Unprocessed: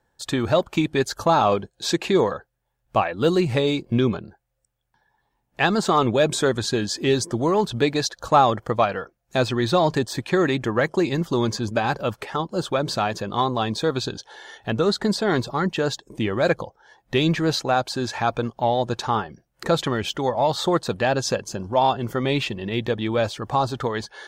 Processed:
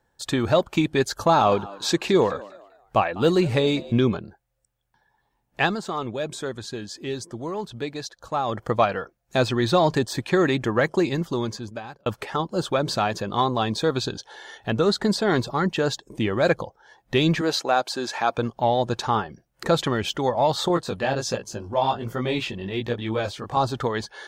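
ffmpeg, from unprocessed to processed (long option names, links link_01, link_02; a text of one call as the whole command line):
ffmpeg -i in.wav -filter_complex "[0:a]asettb=1/sr,asplit=3[link_01][link_02][link_03];[link_01]atrim=end=1.174[link_04];[link_02]atrim=start=1.17:end=3.92,asetpts=PTS-STARTPTS,afade=type=in:duration=0.004:curve=qsin,afade=type=out:start_time=2.746:duration=0.004:curve=qsin,asplit=4[link_05][link_06][link_07][link_08];[link_06]adelay=199,afreqshift=90,volume=-19.5dB[link_09];[link_07]adelay=398,afreqshift=180,volume=-29.7dB[link_10];[link_08]adelay=597,afreqshift=270,volume=-39.8dB[link_11];[link_05][link_09][link_10][link_11]amix=inputs=4:normalize=0,atrim=end_sample=121275[link_12];[link_03]atrim=start=3.916[link_13];[link_04][link_12]acrossfade=duration=0.004:curve1=hsin:curve2=qsin[link_14];[link_14][link_13]acrossfade=duration=0.004:curve1=qsin:curve2=hsin,asettb=1/sr,asplit=3[link_15][link_16][link_17];[link_15]atrim=end=17.414[link_18];[link_16]atrim=start=17.41:end=18.38,asetpts=PTS-STARTPTS,afade=type=in:duration=0.004:curve=qsin,afade=type=out:start_time=0.966:duration=0.004:curve=qsin,highpass=300[link_19];[link_17]atrim=start=18.376[link_20];[link_18][link_19]acrossfade=duration=0.004:curve1=hsin:curve2=qsin[link_21];[link_21][link_20]acrossfade=duration=0.004:curve1=qsin:curve2=hsin,asettb=1/sr,asplit=3[link_22][link_23][link_24];[link_22]atrim=end=20.684[link_25];[link_23]atrim=start=20.68:end=23.57,asetpts=PTS-STARTPTS,afade=type=in:duration=0.004:curve=qsin,afade=type=out:start_time=2.886:duration=0.004:curve=qsin,flanger=delay=16.5:depth=5.4:speed=1.3[link_26];[link_24]atrim=start=23.566[link_27];[link_25][link_26]acrossfade=duration=0.004:curve1=hsin:curve2=qsin[link_28];[link_28][link_27]acrossfade=duration=0.004:curve1=qsin:curve2=hsin,asplit=4[link_29][link_30][link_31][link_32];[link_29]atrim=end=5.79,asetpts=PTS-STARTPTS,afade=type=out:start_time=5.6:duration=0.19:silence=0.316228[link_33];[link_30]atrim=start=5.79:end=8.44,asetpts=PTS-STARTPTS,volume=-10dB[link_34];[link_31]atrim=start=8.44:end=12.06,asetpts=PTS-STARTPTS,afade=type=in:duration=0.19:silence=0.316228,afade=type=out:start_time=2.52:duration=1.1[link_35];[link_32]atrim=start=12.06,asetpts=PTS-STARTPTS,afade=type=in:duration=0.004:curve=hsin[link_36];[link_33][link_34][link_35][link_36]concat=n=4:v=0:a=1" out.wav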